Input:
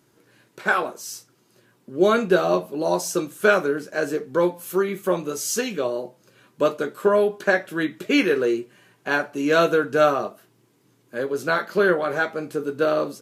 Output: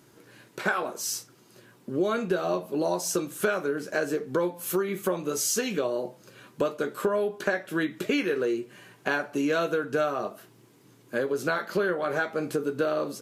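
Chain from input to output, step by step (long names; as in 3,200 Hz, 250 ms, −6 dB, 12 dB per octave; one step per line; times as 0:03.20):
downward compressor 5 to 1, threshold −29 dBFS, peak gain reduction 15.5 dB
level +4.5 dB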